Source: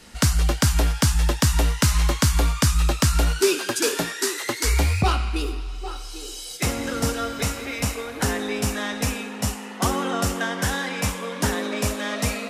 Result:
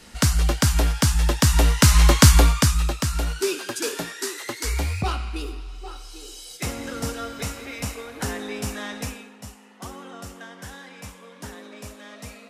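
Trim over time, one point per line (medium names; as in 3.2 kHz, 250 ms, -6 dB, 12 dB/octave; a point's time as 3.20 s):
1.23 s 0 dB
2.29 s +7.5 dB
2.98 s -5 dB
8.97 s -5 dB
9.41 s -15 dB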